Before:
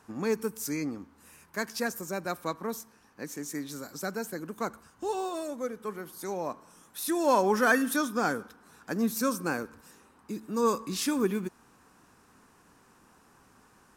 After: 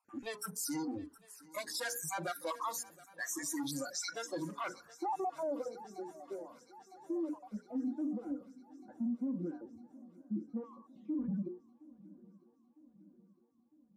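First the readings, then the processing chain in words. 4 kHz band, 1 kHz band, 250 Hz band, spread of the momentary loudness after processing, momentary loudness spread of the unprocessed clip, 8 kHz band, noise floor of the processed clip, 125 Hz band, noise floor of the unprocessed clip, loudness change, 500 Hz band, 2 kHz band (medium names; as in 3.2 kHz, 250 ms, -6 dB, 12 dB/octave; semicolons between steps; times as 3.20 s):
-6.0 dB, -10.0 dB, -6.5 dB, 18 LU, 17 LU, -4.0 dB, -69 dBFS, -7.0 dB, -61 dBFS, -8.5 dB, -12.0 dB, -12.5 dB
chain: random holes in the spectrogram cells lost 39%; treble shelf 7.9 kHz -8 dB; gate -58 dBFS, range -12 dB; hum notches 60/120/180/240/300/360/420/480 Hz; valve stage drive 41 dB, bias 0.25; spectral noise reduction 21 dB; dynamic bell 1 kHz, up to +5 dB, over -57 dBFS, Q 1.2; compression 2:1, threshold -49 dBFS, peak gain reduction 6.5 dB; high-pass 160 Hz 6 dB/octave; low-pass sweep 11 kHz -> 260 Hz, 3.75–5.88 s; on a send: shuffle delay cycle 955 ms, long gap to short 3:1, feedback 55%, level -23 dB; on the sum: peak limiter -42.5 dBFS, peak gain reduction 9 dB; trim +12.5 dB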